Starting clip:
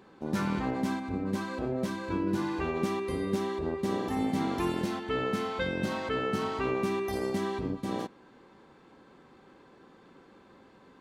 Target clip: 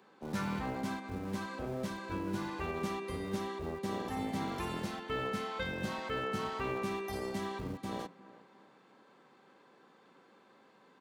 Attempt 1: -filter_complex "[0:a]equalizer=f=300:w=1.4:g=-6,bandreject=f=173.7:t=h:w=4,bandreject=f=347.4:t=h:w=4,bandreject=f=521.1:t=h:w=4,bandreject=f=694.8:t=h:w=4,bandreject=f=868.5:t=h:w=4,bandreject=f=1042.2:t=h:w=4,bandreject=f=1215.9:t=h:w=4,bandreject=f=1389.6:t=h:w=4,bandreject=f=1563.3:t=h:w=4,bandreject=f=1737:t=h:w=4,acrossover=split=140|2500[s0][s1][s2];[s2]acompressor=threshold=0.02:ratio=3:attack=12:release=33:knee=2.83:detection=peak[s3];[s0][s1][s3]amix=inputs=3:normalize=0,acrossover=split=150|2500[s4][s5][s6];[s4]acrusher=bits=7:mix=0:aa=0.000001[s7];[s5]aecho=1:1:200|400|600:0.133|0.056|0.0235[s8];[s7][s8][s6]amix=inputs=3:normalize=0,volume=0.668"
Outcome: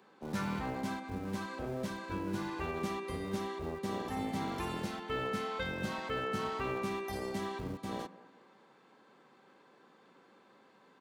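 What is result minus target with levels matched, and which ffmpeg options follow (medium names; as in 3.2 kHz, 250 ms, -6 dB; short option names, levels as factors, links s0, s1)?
echo 154 ms early
-filter_complex "[0:a]equalizer=f=300:w=1.4:g=-6,bandreject=f=173.7:t=h:w=4,bandreject=f=347.4:t=h:w=4,bandreject=f=521.1:t=h:w=4,bandreject=f=694.8:t=h:w=4,bandreject=f=868.5:t=h:w=4,bandreject=f=1042.2:t=h:w=4,bandreject=f=1215.9:t=h:w=4,bandreject=f=1389.6:t=h:w=4,bandreject=f=1563.3:t=h:w=4,bandreject=f=1737:t=h:w=4,acrossover=split=140|2500[s0][s1][s2];[s2]acompressor=threshold=0.02:ratio=3:attack=12:release=33:knee=2.83:detection=peak[s3];[s0][s1][s3]amix=inputs=3:normalize=0,acrossover=split=150|2500[s4][s5][s6];[s4]acrusher=bits=7:mix=0:aa=0.000001[s7];[s5]aecho=1:1:354|708|1062:0.133|0.056|0.0235[s8];[s7][s8][s6]amix=inputs=3:normalize=0,volume=0.668"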